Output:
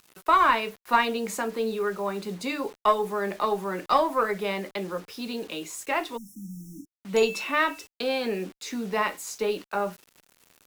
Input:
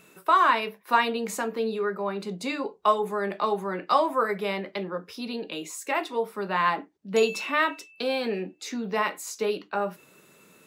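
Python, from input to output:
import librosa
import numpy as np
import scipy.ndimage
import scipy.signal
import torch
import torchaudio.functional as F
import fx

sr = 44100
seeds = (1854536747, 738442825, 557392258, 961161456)

y = fx.quant_dither(x, sr, seeds[0], bits=8, dither='none')
y = fx.cheby_harmonics(y, sr, harmonics=(4,), levels_db=(-26,), full_scale_db=-6.5)
y = fx.spec_erase(y, sr, start_s=6.17, length_s=0.7, low_hz=330.0, high_hz=5300.0)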